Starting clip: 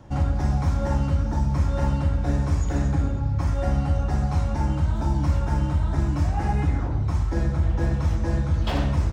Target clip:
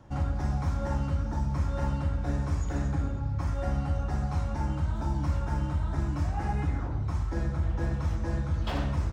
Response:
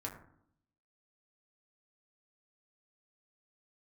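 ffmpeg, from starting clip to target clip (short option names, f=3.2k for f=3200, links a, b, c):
-af "equalizer=f=1.3k:w=1.6:g=3,volume=-6.5dB"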